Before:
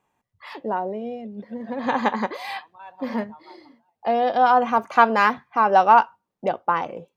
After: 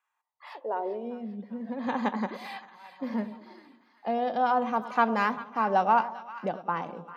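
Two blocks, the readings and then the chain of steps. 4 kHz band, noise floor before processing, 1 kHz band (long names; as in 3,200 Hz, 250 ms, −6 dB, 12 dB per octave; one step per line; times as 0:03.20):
−8.5 dB, −80 dBFS, −8.5 dB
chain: echo with a time of its own for lows and highs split 1,100 Hz, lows 100 ms, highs 395 ms, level −13.5 dB
high-pass filter sweep 1,400 Hz → 180 Hz, 0:00.05–0:01.33
level −9 dB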